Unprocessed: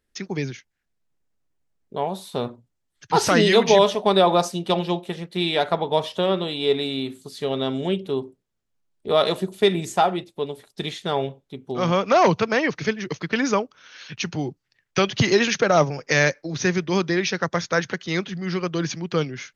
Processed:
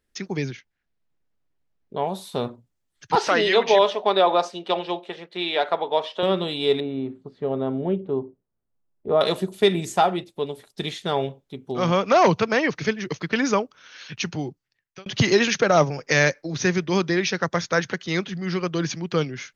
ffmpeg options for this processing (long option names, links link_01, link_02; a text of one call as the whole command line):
ffmpeg -i in.wav -filter_complex "[0:a]asettb=1/sr,asplit=3[link_01][link_02][link_03];[link_01]atrim=end=0.514[link_04];[link_02]atrim=start=0.51:end=2.03,asetpts=PTS-STARTPTS,afade=type=in:duration=0.004:curve=qsin,afade=type=out:start_time=1.516:duration=0.004:curve=qsin,lowpass=4600[link_05];[link_03]atrim=start=2.026[link_06];[link_04][link_05]acrossfade=duration=0.004:curve1=hsin:curve2=qsin[link_07];[link_07][link_06]acrossfade=duration=0.004:curve1=qsin:curve2=hsin,asettb=1/sr,asplit=3[link_08][link_09][link_10];[link_08]atrim=end=3.154[link_11];[link_09]atrim=start=3.15:end=6.23,asetpts=PTS-STARTPTS,afade=type=in:duration=0.004:curve=qsin,afade=type=out:start_time=3.076:duration=0.004:curve=qsin,highpass=400,lowpass=4000[link_12];[link_10]atrim=start=6.226[link_13];[link_11][link_12]acrossfade=duration=0.004:curve1=hsin:curve2=qsin[link_14];[link_14][link_13]acrossfade=duration=0.004:curve1=qsin:curve2=hsin,asettb=1/sr,asplit=3[link_15][link_16][link_17];[link_15]atrim=end=6.804[link_18];[link_16]atrim=start=6.8:end=9.21,asetpts=PTS-STARTPTS,afade=type=in:duration=0.004:curve=qsin,afade=type=out:start_time=2.406:duration=0.004:curve=qsin,lowpass=1100[link_19];[link_17]atrim=start=9.206[link_20];[link_18][link_19]acrossfade=duration=0.004:curve1=hsin:curve2=qsin[link_21];[link_21][link_20]acrossfade=duration=0.004:curve1=qsin:curve2=hsin,asplit=2[link_22][link_23];[link_22]atrim=end=15.06,asetpts=PTS-STARTPTS,afade=type=out:start_time=14.24:duration=0.82[link_24];[link_23]atrim=start=15.06,asetpts=PTS-STARTPTS,afade=type=in:duration=0.004:curve=hsin[link_25];[link_24][link_25]concat=n=2:v=0:a=1" out.wav